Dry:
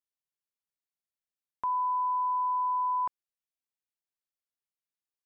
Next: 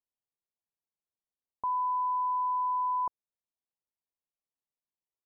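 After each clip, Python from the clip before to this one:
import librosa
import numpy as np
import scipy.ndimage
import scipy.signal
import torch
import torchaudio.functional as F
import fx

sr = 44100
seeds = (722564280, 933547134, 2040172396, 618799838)

y = scipy.signal.sosfilt(scipy.signal.butter(8, 1100.0, 'lowpass', fs=sr, output='sos'), x)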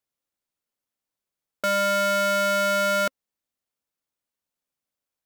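y = fx.peak_eq(x, sr, hz=140.0, db=6.5, octaves=0.87)
y = y * np.sign(np.sin(2.0 * np.pi * 400.0 * np.arange(len(y)) / sr))
y = y * 10.0 ** (7.0 / 20.0)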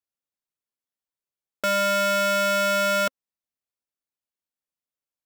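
y = fx.leveller(x, sr, passes=3)
y = y * 10.0 ** (-2.0 / 20.0)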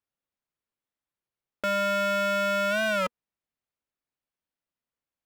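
y = 10.0 ** (-28.0 / 20.0) * np.tanh(x / 10.0 ** (-28.0 / 20.0))
y = fx.bass_treble(y, sr, bass_db=3, treble_db=-11)
y = fx.record_warp(y, sr, rpm=33.33, depth_cents=160.0)
y = y * 10.0 ** (3.5 / 20.0)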